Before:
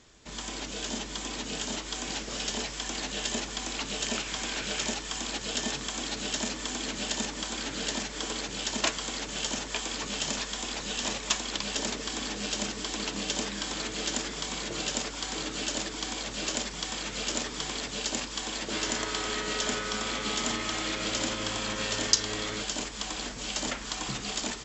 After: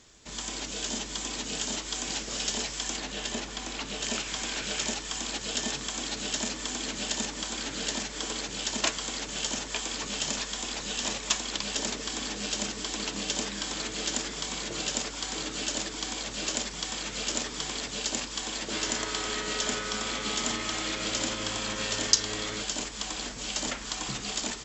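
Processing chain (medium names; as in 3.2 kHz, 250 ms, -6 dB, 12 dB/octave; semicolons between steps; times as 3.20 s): treble shelf 5.1 kHz +7.5 dB, from 2.97 s -3 dB, from 4.04 s +4 dB; trim -1 dB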